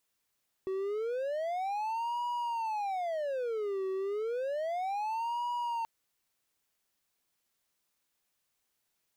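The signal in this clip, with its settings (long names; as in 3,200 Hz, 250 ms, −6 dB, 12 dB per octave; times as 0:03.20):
siren wail 380–965 Hz 0.31 per second triangle −29 dBFS 5.18 s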